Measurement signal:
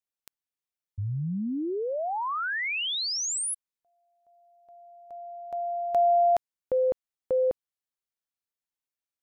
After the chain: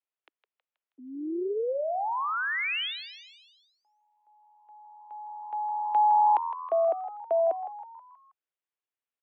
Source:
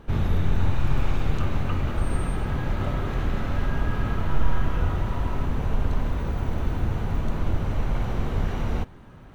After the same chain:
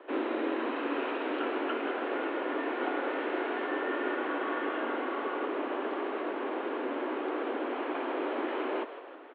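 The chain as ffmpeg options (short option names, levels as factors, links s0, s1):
-filter_complex "[0:a]highpass=f=160:t=q:w=0.5412,highpass=f=160:t=q:w=1.307,lowpass=f=3100:t=q:w=0.5176,lowpass=f=3100:t=q:w=0.7071,lowpass=f=3100:t=q:w=1.932,afreqshift=150,asplit=6[s0][s1][s2][s3][s4][s5];[s1]adelay=160,afreqshift=84,volume=0.251[s6];[s2]adelay=320,afreqshift=168,volume=0.126[s7];[s3]adelay=480,afreqshift=252,volume=0.0631[s8];[s4]adelay=640,afreqshift=336,volume=0.0313[s9];[s5]adelay=800,afreqshift=420,volume=0.0157[s10];[s0][s6][s7][s8][s9][s10]amix=inputs=6:normalize=0"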